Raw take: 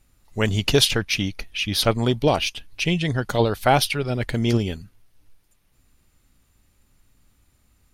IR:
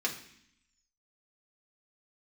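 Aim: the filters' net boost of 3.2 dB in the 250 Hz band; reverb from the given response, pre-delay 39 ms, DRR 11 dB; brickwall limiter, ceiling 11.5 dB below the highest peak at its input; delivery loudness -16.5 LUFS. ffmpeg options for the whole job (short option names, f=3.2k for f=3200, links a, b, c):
-filter_complex "[0:a]equalizer=f=250:t=o:g=4,alimiter=limit=-13.5dB:level=0:latency=1,asplit=2[a][b];[1:a]atrim=start_sample=2205,adelay=39[c];[b][c]afir=irnorm=-1:irlink=0,volume=-17dB[d];[a][d]amix=inputs=2:normalize=0,volume=8dB"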